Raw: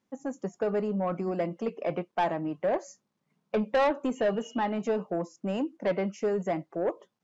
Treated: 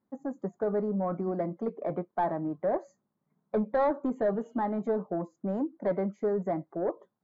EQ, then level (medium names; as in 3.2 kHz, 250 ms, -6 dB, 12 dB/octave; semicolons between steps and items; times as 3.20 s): boxcar filter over 16 samples; band-stop 500 Hz, Q 13; 0.0 dB